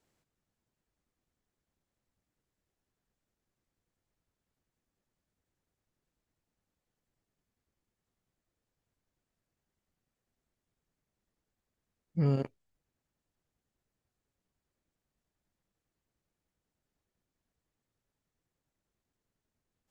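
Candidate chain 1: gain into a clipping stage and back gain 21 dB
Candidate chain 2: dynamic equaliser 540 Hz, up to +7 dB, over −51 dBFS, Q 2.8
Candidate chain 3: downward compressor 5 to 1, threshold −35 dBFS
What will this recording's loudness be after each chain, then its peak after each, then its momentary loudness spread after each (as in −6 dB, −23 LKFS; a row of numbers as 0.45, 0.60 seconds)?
−33.0, −31.5, −42.0 LKFS; −21.0, −16.5, −28.0 dBFS; 11, 11, 8 LU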